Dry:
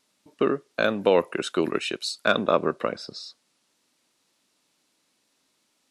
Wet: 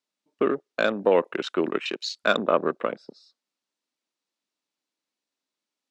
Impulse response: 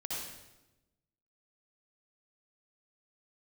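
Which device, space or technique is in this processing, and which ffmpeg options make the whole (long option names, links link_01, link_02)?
over-cleaned archive recording: -af "highpass=190,lowpass=7900,afwtdn=0.0178"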